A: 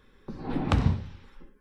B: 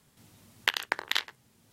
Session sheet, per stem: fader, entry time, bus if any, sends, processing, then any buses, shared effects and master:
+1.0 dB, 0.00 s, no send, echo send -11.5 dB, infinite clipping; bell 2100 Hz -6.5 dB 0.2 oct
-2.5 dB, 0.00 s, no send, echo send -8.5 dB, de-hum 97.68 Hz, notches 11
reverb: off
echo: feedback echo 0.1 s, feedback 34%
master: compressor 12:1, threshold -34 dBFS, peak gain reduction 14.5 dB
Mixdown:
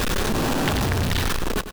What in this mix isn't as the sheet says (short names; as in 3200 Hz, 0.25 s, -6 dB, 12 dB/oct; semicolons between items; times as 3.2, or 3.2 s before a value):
stem A +1.0 dB -> +7.5 dB; master: missing compressor 12:1, threshold -34 dBFS, peak gain reduction 14.5 dB